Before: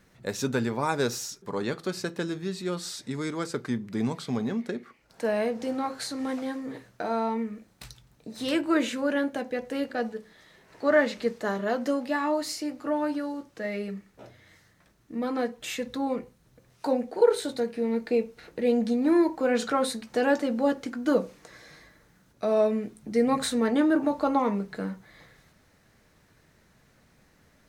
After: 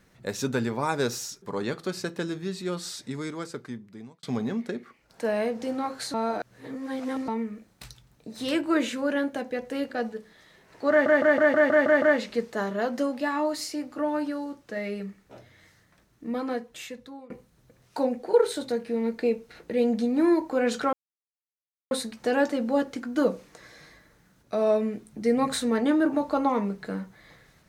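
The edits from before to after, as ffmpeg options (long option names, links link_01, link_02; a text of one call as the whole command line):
ffmpeg -i in.wav -filter_complex "[0:a]asplit=13[link_01][link_02][link_03][link_04][link_05][link_06][link_07][link_08][link_09][link_10][link_11][link_12][link_13];[link_01]atrim=end=4.23,asetpts=PTS-STARTPTS,afade=type=out:start_time=2.98:duration=1.25[link_14];[link_02]atrim=start=4.23:end=6.142,asetpts=PTS-STARTPTS,afade=type=in:duration=0.004:curve=hsin[link_15];[link_03]atrim=start=6.138:end=7.282,asetpts=PTS-STARTPTS,areverse[link_16];[link_04]atrim=start=7.278:end=11.062[link_17];[link_05]atrim=start=10.898:end=11.062[link_18];[link_06]atrim=start=10.898:end=11.062[link_19];[link_07]atrim=start=10.898:end=11.062[link_20];[link_08]atrim=start=10.898:end=11.062[link_21];[link_09]atrim=start=10.898:end=11.062[link_22];[link_10]atrim=start=10.898:end=11.062[link_23];[link_11]atrim=start=10.898:end=16.18,asetpts=PTS-STARTPTS,afade=type=out:start_time=4.292:duration=0.99:silence=0.0630957[link_24];[link_12]atrim=start=16.18:end=19.81,asetpts=PTS-STARTPTS,afade=type=in:duration=0.004:curve=hsin:silence=0.0630957,afade=type=out:start_time=3.626:duration=0.004:curve=hsin,apad=pad_dur=0.98[link_25];[link_13]atrim=start=19.81,asetpts=PTS-STARTPTS,afade=type=in:duration=0.004:curve=hsin[link_26];[link_14][link_15]concat=n=2:v=0:a=1[link_27];[link_27][link_16]acrossfade=duration=0.004:curve1=hsin:curve2=hsin[link_28];[link_28][link_17]acrossfade=duration=0.004:curve1=hsin:curve2=hsin[link_29];[link_29][link_18]acrossfade=duration=0.004:curve1=hsin:curve2=hsin[link_30];[link_30][link_19]acrossfade=duration=0.004:curve1=hsin:curve2=hsin[link_31];[link_31][link_20]acrossfade=duration=0.004:curve1=hsin:curve2=hsin[link_32];[link_32][link_21]acrossfade=duration=0.004:curve1=hsin:curve2=hsin[link_33];[link_33][link_22]acrossfade=duration=0.004:curve1=hsin:curve2=hsin[link_34];[link_34][link_23]acrossfade=duration=0.004:curve1=hsin:curve2=hsin[link_35];[link_24][link_25][link_26]concat=n=3:v=0:a=1[link_36];[link_35][link_36]acrossfade=duration=0.004:curve1=hsin:curve2=hsin" out.wav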